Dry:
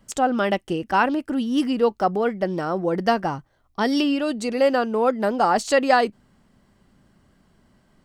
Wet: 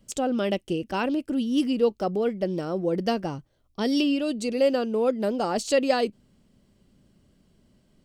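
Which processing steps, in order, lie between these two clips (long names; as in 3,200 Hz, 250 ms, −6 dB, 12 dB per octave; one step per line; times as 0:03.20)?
flat-topped bell 1,200 Hz −9 dB
level −2 dB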